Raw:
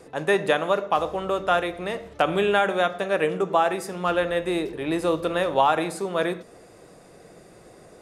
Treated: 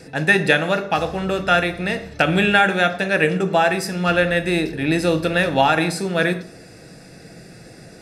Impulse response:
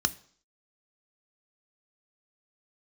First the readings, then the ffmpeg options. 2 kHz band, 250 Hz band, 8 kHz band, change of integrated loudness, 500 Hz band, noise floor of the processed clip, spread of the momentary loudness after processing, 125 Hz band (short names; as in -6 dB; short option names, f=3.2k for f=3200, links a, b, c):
+10.0 dB, +7.5 dB, +7.5 dB, +5.5 dB, +2.5 dB, -43 dBFS, 7 LU, +12.0 dB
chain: -filter_complex "[0:a]asplit=2[a][b];[1:a]atrim=start_sample=2205,lowshelf=f=130:g=-10[c];[b][c]afir=irnorm=-1:irlink=0,volume=-8dB[d];[a][d]amix=inputs=2:normalize=0,volume=7.5dB"